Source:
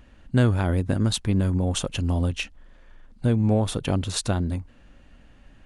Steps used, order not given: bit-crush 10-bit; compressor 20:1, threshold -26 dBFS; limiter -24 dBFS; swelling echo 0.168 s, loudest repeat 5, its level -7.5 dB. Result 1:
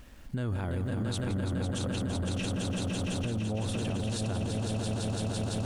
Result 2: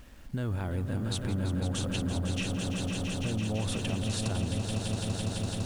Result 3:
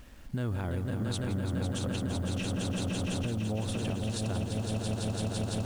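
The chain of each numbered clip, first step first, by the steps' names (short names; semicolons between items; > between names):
swelling echo > bit-crush > limiter > compressor; limiter > swelling echo > bit-crush > compressor; swelling echo > compressor > limiter > bit-crush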